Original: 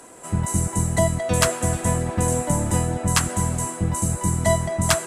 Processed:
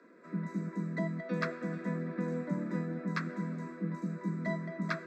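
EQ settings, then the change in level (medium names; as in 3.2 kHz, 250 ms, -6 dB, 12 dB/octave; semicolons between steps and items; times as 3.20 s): steep high-pass 160 Hz 96 dB/octave; distance through air 380 m; static phaser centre 3 kHz, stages 6; -6.5 dB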